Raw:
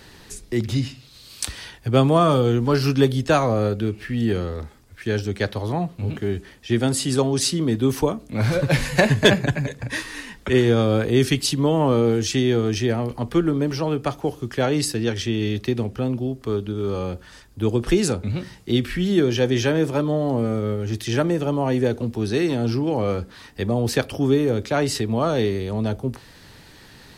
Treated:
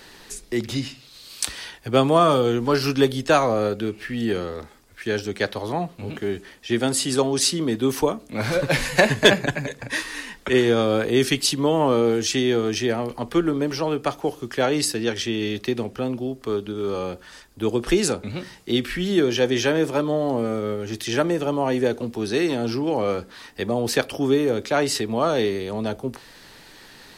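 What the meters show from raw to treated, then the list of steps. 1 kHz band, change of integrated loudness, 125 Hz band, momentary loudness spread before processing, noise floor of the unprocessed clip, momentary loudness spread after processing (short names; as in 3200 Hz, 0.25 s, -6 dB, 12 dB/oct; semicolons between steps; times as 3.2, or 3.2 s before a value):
+1.5 dB, -0.5 dB, -7.5 dB, 11 LU, -47 dBFS, 11 LU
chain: bell 81 Hz -13 dB 2.3 oct; gain +2 dB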